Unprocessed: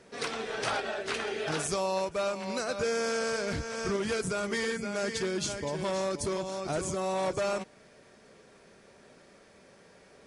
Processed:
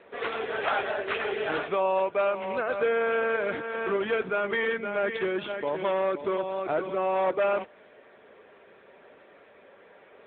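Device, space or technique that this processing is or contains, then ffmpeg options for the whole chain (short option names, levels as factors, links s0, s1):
telephone: -af "highpass=360,lowpass=3400,volume=2.11" -ar 8000 -c:a libopencore_amrnb -b:a 10200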